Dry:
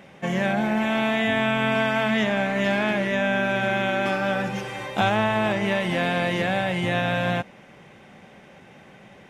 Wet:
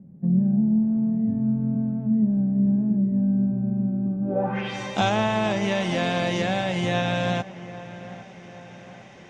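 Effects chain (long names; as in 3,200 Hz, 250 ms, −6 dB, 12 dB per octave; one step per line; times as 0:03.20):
dynamic equaliser 1,800 Hz, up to −5 dB, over −36 dBFS, Q 1.1
low-pass filter sweep 190 Hz → 6,200 Hz, 0:04.21–0:04.77
on a send: delay with a low-pass on its return 805 ms, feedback 50%, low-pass 2,200 Hz, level −15.5 dB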